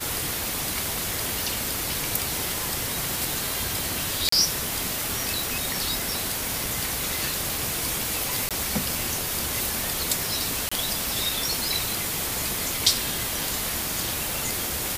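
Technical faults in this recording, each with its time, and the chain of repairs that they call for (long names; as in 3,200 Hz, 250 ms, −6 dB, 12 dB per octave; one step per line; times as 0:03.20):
surface crackle 54 per second −34 dBFS
0:04.29–0:04.32: drop-out 34 ms
0:08.49–0:08.51: drop-out 17 ms
0:10.69–0:10.71: drop-out 25 ms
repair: click removal
repair the gap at 0:04.29, 34 ms
repair the gap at 0:08.49, 17 ms
repair the gap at 0:10.69, 25 ms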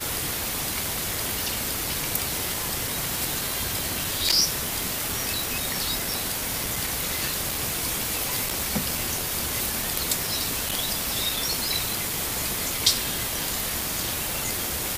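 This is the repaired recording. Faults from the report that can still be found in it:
none of them is left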